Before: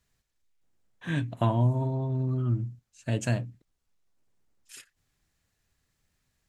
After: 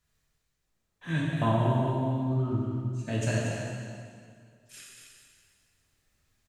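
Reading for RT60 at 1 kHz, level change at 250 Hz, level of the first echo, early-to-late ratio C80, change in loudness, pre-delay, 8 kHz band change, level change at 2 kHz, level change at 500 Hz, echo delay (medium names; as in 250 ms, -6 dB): 2.1 s, +2.0 dB, -7.5 dB, -1.0 dB, -0.5 dB, 6 ms, +2.5 dB, +3.0 dB, +3.0 dB, 236 ms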